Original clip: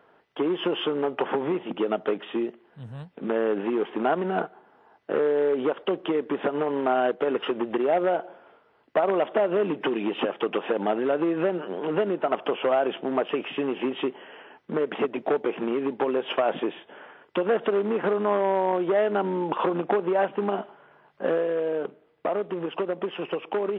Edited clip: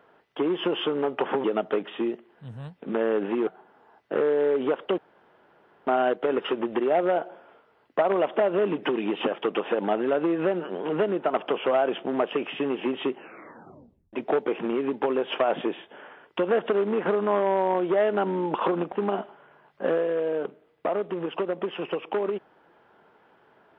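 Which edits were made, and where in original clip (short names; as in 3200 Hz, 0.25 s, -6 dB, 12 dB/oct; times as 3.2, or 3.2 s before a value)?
1.44–1.79 cut
3.82–4.45 cut
5.96–6.85 room tone
14.11 tape stop 1.00 s
19.9–20.32 cut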